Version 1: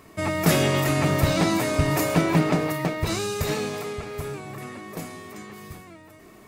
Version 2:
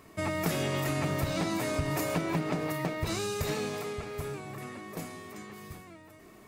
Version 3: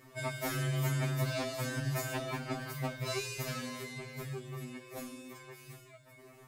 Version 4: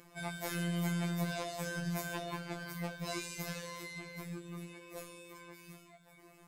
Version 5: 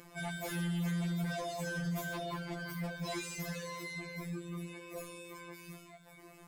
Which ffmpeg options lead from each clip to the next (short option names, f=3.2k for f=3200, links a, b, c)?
-af "acompressor=threshold=-22dB:ratio=6,volume=-4.5dB"
-af "afftfilt=real='re*2.45*eq(mod(b,6),0)':imag='im*2.45*eq(mod(b,6),0)':win_size=2048:overlap=0.75"
-af "afftfilt=real='hypot(re,im)*cos(PI*b)':imag='0':win_size=1024:overlap=0.75,acompressor=mode=upward:threshold=-55dB:ratio=2.5,volume=1dB"
-af "asoftclip=type=tanh:threshold=-34dB,volume=4dB"